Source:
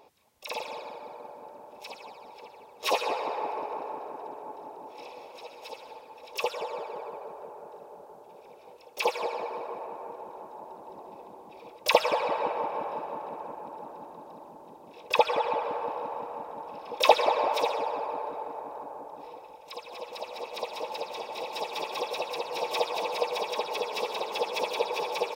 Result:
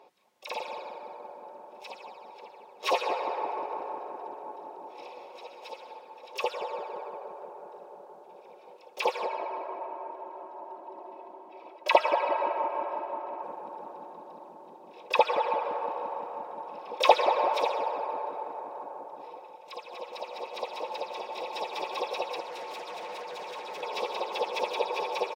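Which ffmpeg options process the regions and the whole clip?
-filter_complex "[0:a]asettb=1/sr,asplit=3[a][b][c];[a]atrim=end=9.264[d];[b]atrim=start=9.26:end=13.43,asetpts=PTS-STARTPTS,afade=t=in:d=0.004:c=qsin,afade=t=out:st=4.166:d=0.004:c=qsin,bass=f=250:g=-10,treble=f=4k:g=-9,bandreject=f=3.7k:w=18,aecho=1:1:3.1:0.58,atrim=end_sample=183897[e];[c]atrim=start=13.426[f];[d][e]acrossfade=d=0.004:c1=hsin:c2=qsin[g];[g][f]acrossfade=d=0.004:c1=qsin:c2=hsin,asettb=1/sr,asplit=3[h][i][j];[h]atrim=end=22.404[k];[i]atrim=start=22.4:end=23.83,asetpts=PTS-STARTPTS,afade=t=in:d=0.004:c=qsin,afade=t=out:st=1.426:d=0.004:c=qsin,acompressor=threshold=-30dB:ratio=6:attack=3.2:release=140:knee=1:detection=peak,asoftclip=type=hard:threshold=-36.5dB[l];[j]atrim=start=23.826[m];[k][l]acrossfade=d=0.004:c1=hsin:c2=qsin[n];[n][m]acrossfade=d=0.004:c1=qsin:c2=hsin,highpass=250,highshelf=f=6.3k:g=-11,aecho=1:1:5.5:0.34"

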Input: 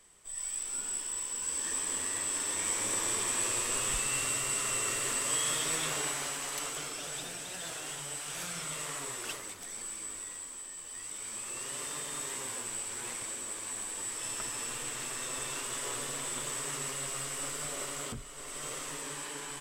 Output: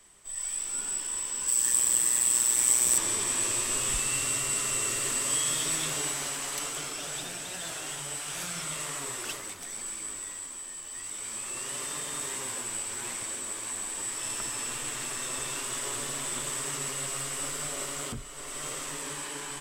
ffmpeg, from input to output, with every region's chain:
-filter_complex "[0:a]asettb=1/sr,asplit=3[a][b][c];[a]atrim=end=1.484[d];[b]atrim=start=1.48:end=2.98,asetpts=PTS-STARTPTS,afade=t=in:d=0.004:c=qsin,afade=t=out:st=1.496:d=0.004:c=qsin,aeval=exprs='val(0)*sin(2*PI*61*n/s)':c=same,aemphasis=mode=production:type=50fm[e];[c]atrim=start=2.976[f];[d][e]acrossfade=d=0.004:c1=hsin:c2=qsin[g];[g][f]acrossfade=d=0.004:c1=qsin:c2=hsin,bandreject=f=480:w=12,acrossover=split=440|3000[h][i][j];[i]acompressor=threshold=-41dB:ratio=6[k];[h][k][j]amix=inputs=3:normalize=0,volume=3.5dB"

